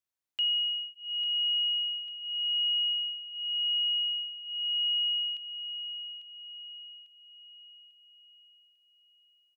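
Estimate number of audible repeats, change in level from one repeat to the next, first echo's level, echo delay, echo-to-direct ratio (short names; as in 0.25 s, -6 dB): 4, -7.0 dB, -10.0 dB, 0.847 s, -9.0 dB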